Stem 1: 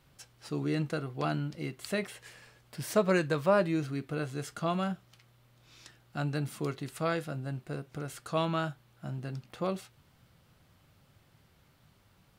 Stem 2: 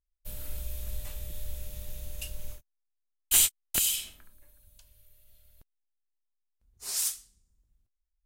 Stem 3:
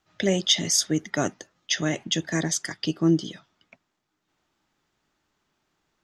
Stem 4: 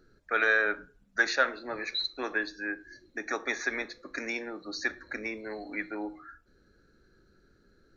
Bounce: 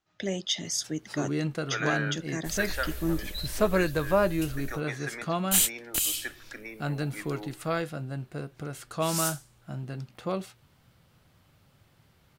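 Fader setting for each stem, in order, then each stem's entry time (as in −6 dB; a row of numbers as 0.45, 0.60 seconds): +1.5, −1.0, −8.5, −6.5 decibels; 0.65, 2.20, 0.00, 1.40 seconds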